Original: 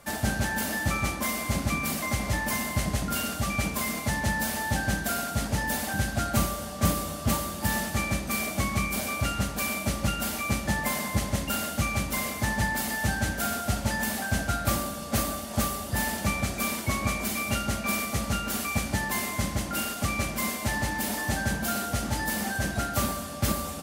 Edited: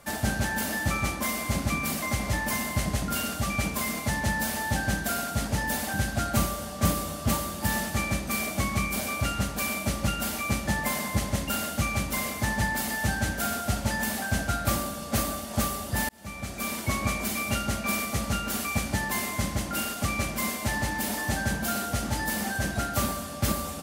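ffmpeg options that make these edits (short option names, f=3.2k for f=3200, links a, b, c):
-filter_complex "[0:a]asplit=2[a][b];[a]atrim=end=16.09,asetpts=PTS-STARTPTS,afade=t=out:st=16.086:d=0.004:c=hsin[c];[b]atrim=start=16.09,asetpts=PTS-STARTPTS,afade=t=in:d=0.78[d];[c][d]concat=n=2:v=0:a=1"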